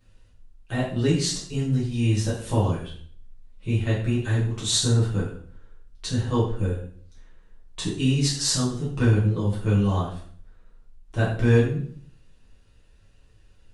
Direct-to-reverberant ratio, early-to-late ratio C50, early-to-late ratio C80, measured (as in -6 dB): -8.0 dB, 4.5 dB, 8.0 dB